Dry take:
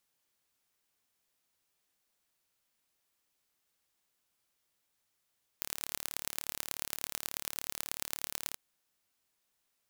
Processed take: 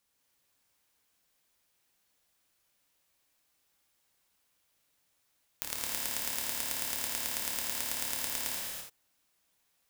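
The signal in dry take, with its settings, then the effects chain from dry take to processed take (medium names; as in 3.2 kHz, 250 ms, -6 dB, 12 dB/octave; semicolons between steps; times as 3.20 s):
pulse train 36.6 per s, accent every 4, -6 dBFS 2.93 s
gated-style reverb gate 360 ms flat, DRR -4 dB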